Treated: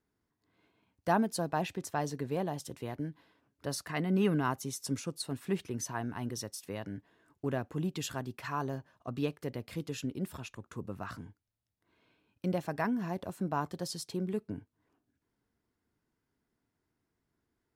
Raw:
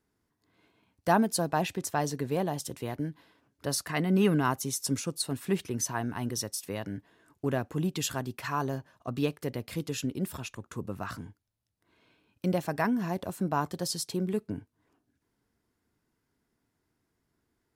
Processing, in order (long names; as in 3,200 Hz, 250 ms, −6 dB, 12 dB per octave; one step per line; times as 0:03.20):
high-shelf EQ 5,500 Hz −6 dB
level −4 dB